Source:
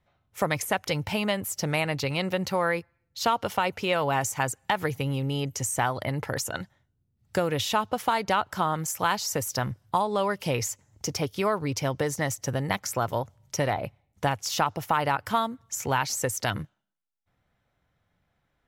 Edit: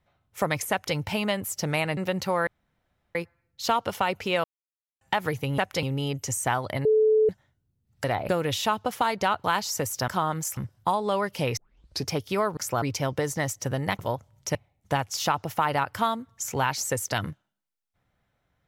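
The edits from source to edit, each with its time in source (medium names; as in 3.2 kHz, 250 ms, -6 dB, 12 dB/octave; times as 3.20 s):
0.71–0.96 s: copy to 5.15 s
1.97–2.22 s: delete
2.72 s: insert room tone 0.68 s
4.01–4.58 s: mute
6.17–6.61 s: bleep 434 Hz -16.5 dBFS
8.51–9.00 s: move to 9.64 s
10.64 s: tape start 0.50 s
12.81–13.06 s: move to 11.64 s
13.62–13.87 s: move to 7.36 s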